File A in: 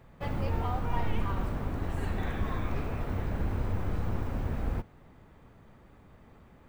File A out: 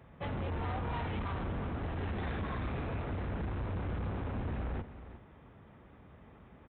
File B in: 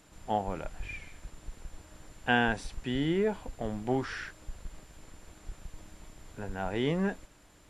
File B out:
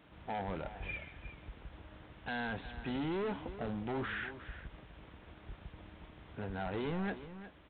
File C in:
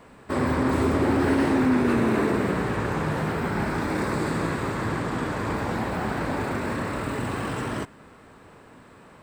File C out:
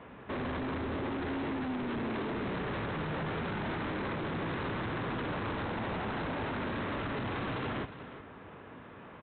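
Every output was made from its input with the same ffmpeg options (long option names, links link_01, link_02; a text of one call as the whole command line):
ffmpeg -i in.wav -af "highpass=frequency=45:width=0.5412,highpass=frequency=45:width=1.3066,alimiter=limit=-22dB:level=0:latency=1:release=29,aresample=8000,asoftclip=type=hard:threshold=-33.5dB,aresample=44100,aecho=1:1:359:0.224" out.wav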